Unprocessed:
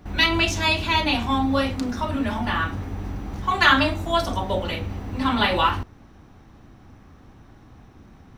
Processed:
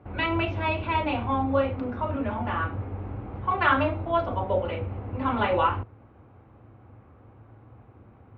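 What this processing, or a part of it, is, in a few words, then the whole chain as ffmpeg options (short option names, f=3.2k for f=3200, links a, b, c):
bass cabinet: -af "highpass=76,equalizer=f=110:t=q:w=4:g=8,equalizer=f=170:t=q:w=4:g=-10,equalizer=f=260:t=q:w=4:g=-3,equalizer=f=510:t=q:w=4:g=6,equalizer=f=1.8k:t=q:w=4:g=-8,lowpass=f=2.3k:w=0.5412,lowpass=f=2.3k:w=1.3066,volume=-2.5dB"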